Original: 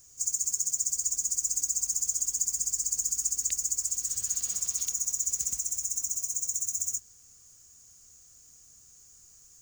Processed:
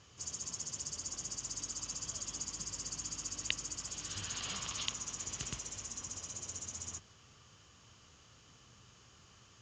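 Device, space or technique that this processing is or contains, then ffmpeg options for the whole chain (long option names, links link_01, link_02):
guitar cabinet: -af "highpass=82,equalizer=frequency=120:width_type=q:width=4:gain=4,equalizer=frequency=1100:width_type=q:width=4:gain=7,equalizer=frequency=3000:width_type=q:width=4:gain=8,lowpass=frequency=3800:width=0.5412,lowpass=frequency=3800:width=1.3066,volume=9dB"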